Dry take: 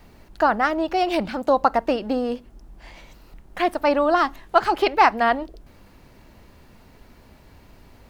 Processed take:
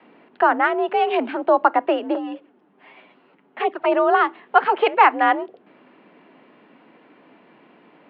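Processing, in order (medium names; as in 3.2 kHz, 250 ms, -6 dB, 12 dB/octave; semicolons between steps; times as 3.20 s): 2.14–3.92 s: touch-sensitive flanger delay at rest 11 ms, full sweep at -16.5 dBFS; mistuned SSB +53 Hz 150–3100 Hz; trim +2 dB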